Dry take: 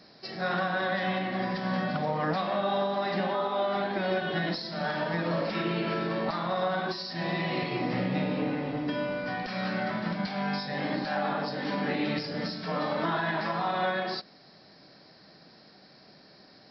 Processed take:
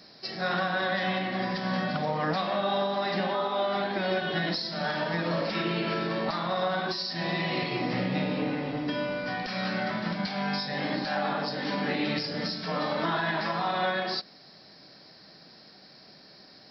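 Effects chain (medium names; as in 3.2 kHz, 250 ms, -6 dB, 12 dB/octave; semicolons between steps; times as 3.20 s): treble shelf 3.4 kHz +7.5 dB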